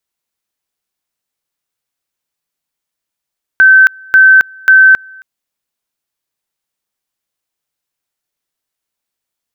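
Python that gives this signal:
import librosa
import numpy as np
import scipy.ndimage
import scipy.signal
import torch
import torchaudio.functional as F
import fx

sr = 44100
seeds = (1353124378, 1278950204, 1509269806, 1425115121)

y = fx.two_level_tone(sr, hz=1540.0, level_db=-1.5, drop_db=29.5, high_s=0.27, low_s=0.27, rounds=3)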